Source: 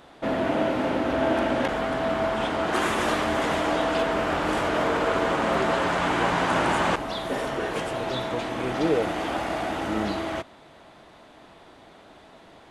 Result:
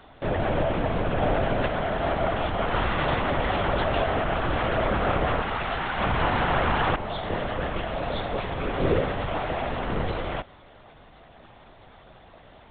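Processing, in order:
0:05.41–0:05.99: high-pass filter 1,100 Hz 6 dB per octave
linear-prediction vocoder at 8 kHz whisper

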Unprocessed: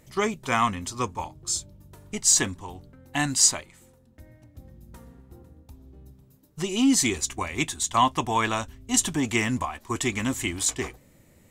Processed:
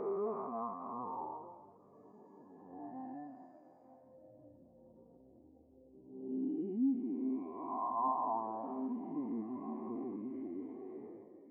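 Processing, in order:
spectrum smeared in time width 689 ms
downward compressor 6 to 1, threshold −38 dBFS, peak gain reduction 11 dB
power curve on the samples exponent 0.5
resonant band-pass 650 Hz, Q 1
high-frequency loss of the air 56 metres
feedback delay with all-pass diffusion 1,105 ms, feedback 41%, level −11 dB
every bin expanded away from the loudest bin 2.5 to 1
level +4.5 dB

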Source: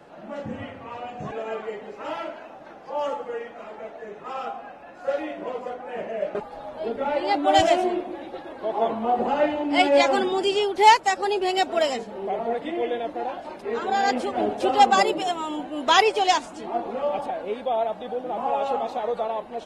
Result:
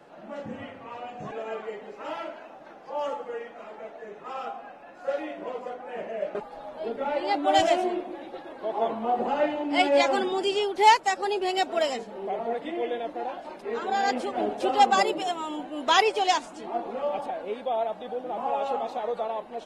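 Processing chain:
parametric band 73 Hz −8.5 dB 1.5 octaves
level −3 dB

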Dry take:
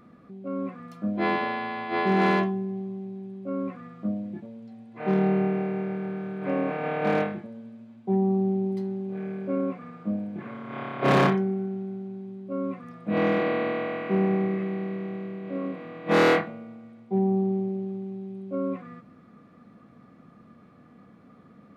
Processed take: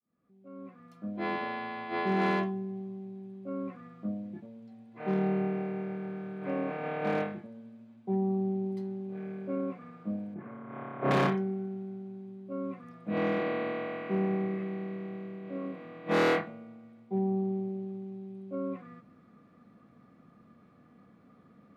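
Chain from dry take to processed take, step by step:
fade in at the beginning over 1.59 s
0:10.34–0:11.11: low-pass filter 1,600 Hz 12 dB per octave
level −6 dB

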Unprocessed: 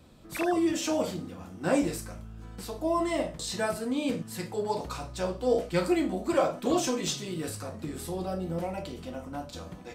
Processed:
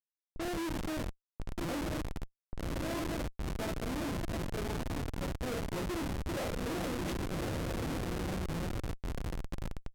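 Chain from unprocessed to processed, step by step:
feedback delay with all-pass diffusion 1,102 ms, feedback 56%, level −3.5 dB
comparator with hysteresis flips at −25.5 dBFS
low-pass that shuts in the quiet parts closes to 430 Hz, open at −28 dBFS
level −6.5 dB

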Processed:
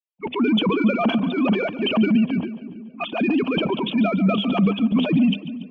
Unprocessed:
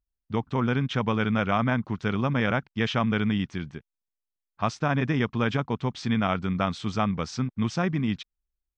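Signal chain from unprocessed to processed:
three sine waves on the formant tracks
high shelf with overshoot 1,800 Hz +6.5 dB, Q 3
mains-hum notches 50/100/150/200/250 Hz
automatic gain control gain up to 10 dB
in parallel at −1 dB: brickwall limiter −11 dBFS, peak gain reduction 8 dB
on the sum: downward compressor 16 to 1, threshold −11 dBFS, peak gain reduction 8.5 dB
transient designer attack −7 dB, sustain +9 dB
phase-vocoder stretch with locked phases 0.65×
phaser swept by the level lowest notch 290 Hz, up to 2,000 Hz, full sweep at −21 dBFS
soft clipping −2.5 dBFS, distortion −37 dB
on a send: echo with a time of its own for lows and highs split 460 Hz, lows 322 ms, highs 143 ms, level −15 dB
on the sum: level −1 dB

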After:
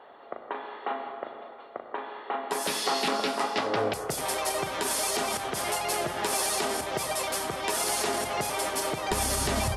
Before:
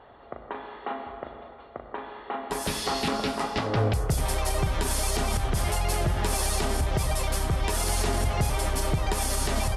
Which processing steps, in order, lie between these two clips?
high-pass filter 320 Hz 12 dB per octave, from 0:09.11 77 Hz
level +1.5 dB

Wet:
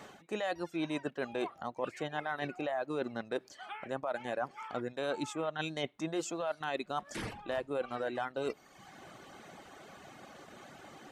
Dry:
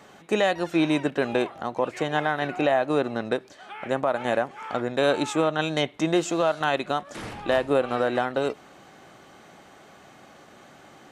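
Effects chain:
reverb reduction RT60 0.85 s
reversed playback
downward compressor 6 to 1, threshold −33 dBFS, peak gain reduction 14.5 dB
reversed playback

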